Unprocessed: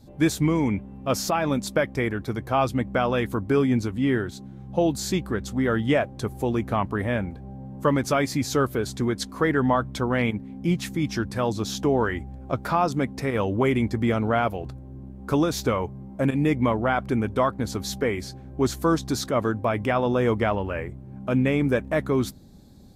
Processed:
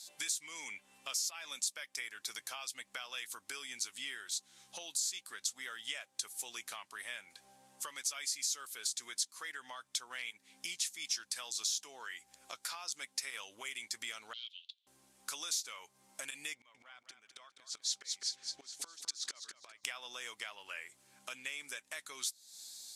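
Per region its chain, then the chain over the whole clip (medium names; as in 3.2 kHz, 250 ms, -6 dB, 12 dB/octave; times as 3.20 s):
14.33–14.87 s: hard clipper -14 dBFS + Butterworth band-pass 3.4 kHz, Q 3.8
16.54–19.84 s: distance through air 84 m + inverted gate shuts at -19 dBFS, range -27 dB + feedback delay 205 ms, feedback 24%, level -9 dB
whole clip: pre-emphasis filter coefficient 0.97; compression 8:1, threshold -53 dBFS; frequency weighting ITU-R 468; trim +8 dB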